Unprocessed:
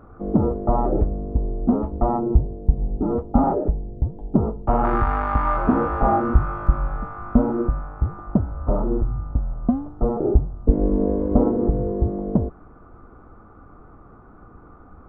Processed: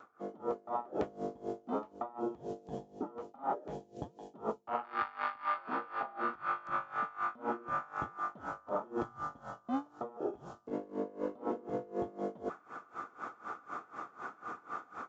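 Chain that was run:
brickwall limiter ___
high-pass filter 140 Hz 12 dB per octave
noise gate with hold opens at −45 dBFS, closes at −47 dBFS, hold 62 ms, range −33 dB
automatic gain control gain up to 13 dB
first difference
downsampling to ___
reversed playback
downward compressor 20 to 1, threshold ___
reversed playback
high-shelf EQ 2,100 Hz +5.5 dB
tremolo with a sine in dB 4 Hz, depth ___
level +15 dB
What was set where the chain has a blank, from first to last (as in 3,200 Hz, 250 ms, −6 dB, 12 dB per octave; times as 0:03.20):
−11 dBFS, 16,000 Hz, −44 dBFS, 22 dB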